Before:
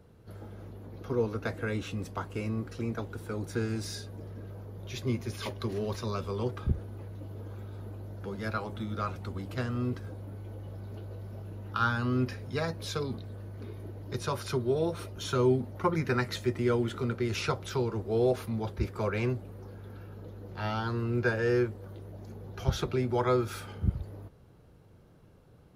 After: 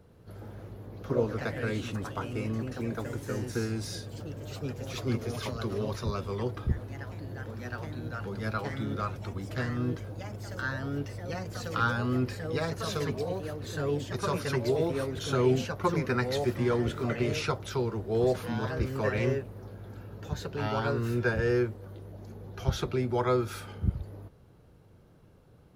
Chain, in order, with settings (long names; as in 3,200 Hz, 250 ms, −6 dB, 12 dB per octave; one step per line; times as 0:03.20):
delay with pitch and tempo change per echo 115 ms, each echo +2 semitones, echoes 3, each echo −6 dB